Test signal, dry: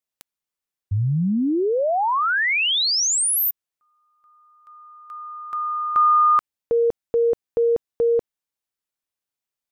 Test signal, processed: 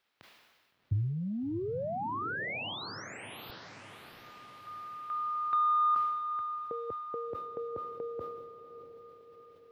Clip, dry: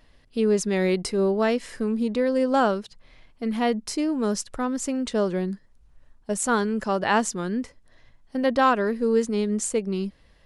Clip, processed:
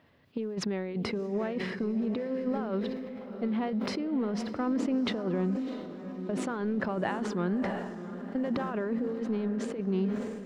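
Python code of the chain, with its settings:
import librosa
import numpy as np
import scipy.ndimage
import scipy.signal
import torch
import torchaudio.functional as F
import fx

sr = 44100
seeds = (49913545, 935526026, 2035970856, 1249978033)

p1 = scipy.signal.sosfilt(scipy.signal.butter(4, 96.0, 'highpass', fs=sr, output='sos'), x)
p2 = fx.high_shelf(p1, sr, hz=8600.0, db=-5.0)
p3 = fx.over_compress(p2, sr, threshold_db=-26.0, ratio=-0.5)
p4 = 10.0 ** (-15.5 / 20.0) * np.tanh(p3 / 10.0 ** (-15.5 / 20.0))
p5 = fx.dmg_noise_colour(p4, sr, seeds[0], colour='blue', level_db=-57.0)
p6 = fx.air_absorb(p5, sr, metres=360.0)
p7 = p6 + fx.echo_diffused(p6, sr, ms=695, feedback_pct=52, wet_db=-10.0, dry=0)
p8 = fx.sustainer(p7, sr, db_per_s=36.0)
y = F.gain(torch.from_numpy(p8), -3.5).numpy()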